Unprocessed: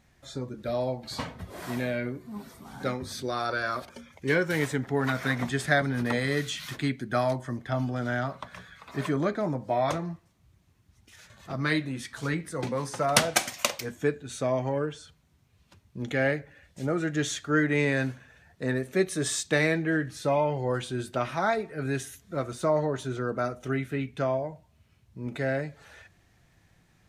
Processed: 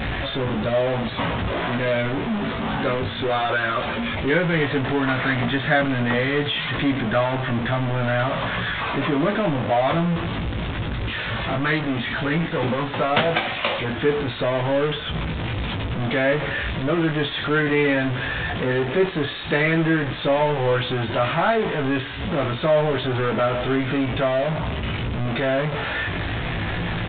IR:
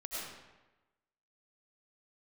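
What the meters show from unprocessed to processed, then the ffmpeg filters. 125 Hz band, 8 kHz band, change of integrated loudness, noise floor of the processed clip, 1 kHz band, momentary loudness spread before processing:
+8.0 dB, below −40 dB, +6.5 dB, −29 dBFS, +8.0 dB, 13 LU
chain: -filter_complex "[0:a]aeval=exprs='val(0)+0.5*0.0944*sgn(val(0))':channel_layout=same,asplit=2[link_01][link_02];[link_02]adelay=18,volume=-4.5dB[link_03];[link_01][link_03]amix=inputs=2:normalize=0" -ar 8000 -c:a pcm_mulaw

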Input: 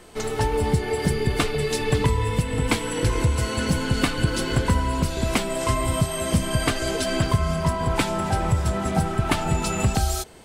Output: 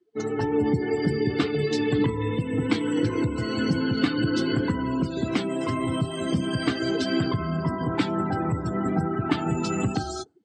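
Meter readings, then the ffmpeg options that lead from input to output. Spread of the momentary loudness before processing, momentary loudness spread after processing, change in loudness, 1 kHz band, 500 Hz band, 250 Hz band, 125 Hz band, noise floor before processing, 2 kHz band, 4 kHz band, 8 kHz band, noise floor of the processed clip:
2 LU, 3 LU, −2.0 dB, −5.0 dB, −1.5 dB, +2.5 dB, −5.0 dB, −29 dBFS, −4.0 dB, −4.5 dB, −13.0 dB, −33 dBFS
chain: -af "afftdn=noise_reduction=35:noise_floor=-33,alimiter=limit=-14.5dB:level=0:latency=1:release=29,highpass=frequency=110:width=0.5412,highpass=frequency=110:width=1.3066,equalizer=frequency=300:width_type=q:width=4:gain=10,equalizer=frequency=610:width_type=q:width=4:gain=-8,equalizer=frequency=950:width_type=q:width=4:gain=-6,equalizer=frequency=2500:width_type=q:width=4:gain=-4,lowpass=frequency=6300:width=0.5412,lowpass=frequency=6300:width=1.3066"

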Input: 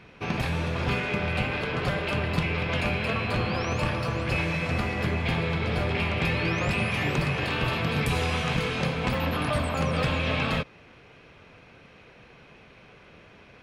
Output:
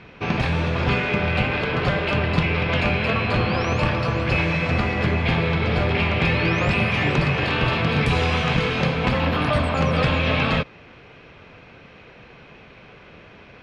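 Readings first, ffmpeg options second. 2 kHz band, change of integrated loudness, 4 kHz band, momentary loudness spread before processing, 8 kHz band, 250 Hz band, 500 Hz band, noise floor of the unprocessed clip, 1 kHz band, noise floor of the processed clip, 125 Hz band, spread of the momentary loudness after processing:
+6.0 dB, +6.0 dB, +5.0 dB, 2 LU, can't be measured, +6.0 dB, +6.0 dB, −53 dBFS, +6.0 dB, −47 dBFS, +6.0 dB, 2 LU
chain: -af "lowpass=5000,volume=6dB"

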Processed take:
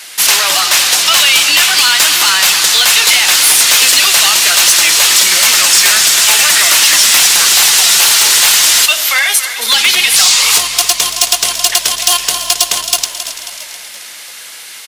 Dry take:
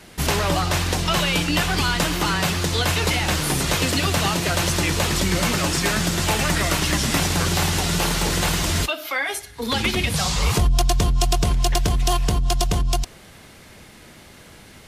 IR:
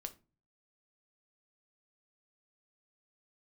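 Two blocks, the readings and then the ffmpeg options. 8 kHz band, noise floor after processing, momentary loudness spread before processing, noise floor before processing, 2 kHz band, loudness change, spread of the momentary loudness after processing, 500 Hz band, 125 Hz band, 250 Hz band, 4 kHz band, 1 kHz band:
+19.0 dB, −30 dBFS, 3 LU, −46 dBFS, +13.5 dB, +14.5 dB, 6 LU, −0.5 dB, below −15 dB, −10.5 dB, +17.0 dB, +7.0 dB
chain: -filter_complex "[0:a]asplit=2[link_01][link_02];[link_02]aecho=0:1:270|540|810|1080|1350:0.2|0.106|0.056|0.0297|0.0157[link_03];[link_01][link_03]amix=inputs=2:normalize=0,asplit=2[link_04][link_05];[link_05]highpass=frequency=720:poles=1,volume=11dB,asoftclip=type=tanh:threshold=-9dB[link_06];[link_04][link_06]amix=inputs=2:normalize=0,lowpass=frequency=3800:poles=1,volume=-6dB,aderivative,asplit=2[link_07][link_08];[link_08]asplit=5[link_09][link_10][link_11][link_12][link_13];[link_09]adelay=337,afreqshift=-45,volume=-14.5dB[link_14];[link_10]adelay=674,afreqshift=-90,volume=-20dB[link_15];[link_11]adelay=1011,afreqshift=-135,volume=-25.5dB[link_16];[link_12]adelay=1348,afreqshift=-180,volume=-31dB[link_17];[link_13]adelay=1685,afreqshift=-225,volume=-36.6dB[link_18];[link_14][link_15][link_16][link_17][link_18]amix=inputs=5:normalize=0[link_19];[link_07][link_19]amix=inputs=2:normalize=0,apsyclip=21.5dB,volume=-1.5dB"

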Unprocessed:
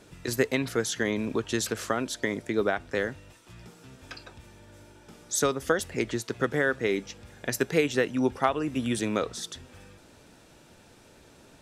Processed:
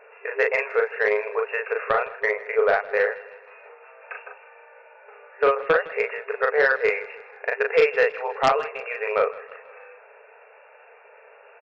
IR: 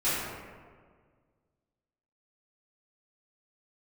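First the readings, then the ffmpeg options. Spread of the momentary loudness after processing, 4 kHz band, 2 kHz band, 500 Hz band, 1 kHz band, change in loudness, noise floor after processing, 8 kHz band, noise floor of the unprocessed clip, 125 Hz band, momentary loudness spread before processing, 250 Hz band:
13 LU, −4.0 dB, +8.0 dB, +7.0 dB, +7.5 dB, +5.5 dB, −51 dBFS, below −20 dB, −55 dBFS, below −10 dB, 11 LU, −15.5 dB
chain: -filter_complex "[0:a]afftfilt=real='re*between(b*sr/4096,400,2800)':imag='im*between(b*sr/4096,400,2800)':win_size=4096:overlap=0.75,asplit=2[link_01][link_02];[link_02]adelay=38,volume=-3dB[link_03];[link_01][link_03]amix=inputs=2:normalize=0,aeval=exprs='0.422*(cos(1*acos(clip(val(0)/0.422,-1,1)))-cos(1*PI/2))+0.15*(cos(5*acos(clip(val(0)/0.422,-1,1)))-cos(5*PI/2))+0.0299*(cos(7*acos(clip(val(0)/0.422,-1,1)))-cos(7*PI/2))':channel_layout=same,asplit=2[link_04][link_05];[link_05]aecho=0:1:159|318|477|636:0.112|0.0539|0.0259|0.0124[link_06];[link_04][link_06]amix=inputs=2:normalize=0"

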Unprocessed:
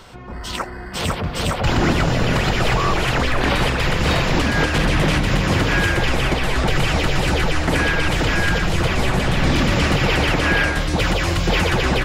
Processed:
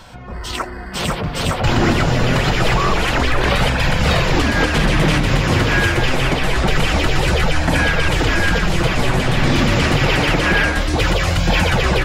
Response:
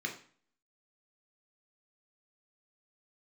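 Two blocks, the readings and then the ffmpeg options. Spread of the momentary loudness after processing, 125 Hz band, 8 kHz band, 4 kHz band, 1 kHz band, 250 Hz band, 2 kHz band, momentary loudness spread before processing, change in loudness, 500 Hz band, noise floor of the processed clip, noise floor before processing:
6 LU, +2.5 dB, +2.0 dB, +2.0 dB, +2.0 dB, +2.0 dB, +2.0 dB, 5 LU, +2.0 dB, +2.0 dB, −29 dBFS, −31 dBFS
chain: -af "flanger=delay=1.2:depth=7.3:regen=-46:speed=0.26:shape=sinusoidal,volume=6dB"

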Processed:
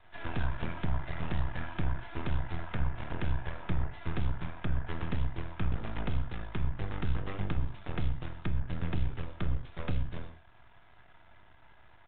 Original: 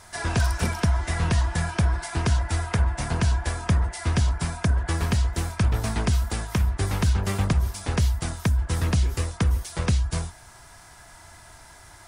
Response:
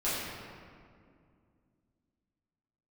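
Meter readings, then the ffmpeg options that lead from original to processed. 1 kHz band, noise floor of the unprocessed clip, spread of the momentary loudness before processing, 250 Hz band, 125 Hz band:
−10.5 dB, −48 dBFS, 3 LU, −9.5 dB, −11.5 dB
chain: -filter_complex "[0:a]aeval=exprs='max(val(0),0)':channel_layout=same,asplit=2[link_01][link_02];[1:a]atrim=start_sample=2205,atrim=end_sample=6174,lowpass=3500[link_03];[link_02][link_03]afir=irnorm=-1:irlink=0,volume=-13.5dB[link_04];[link_01][link_04]amix=inputs=2:normalize=0,aresample=8000,aresample=44100,volume=-8.5dB"

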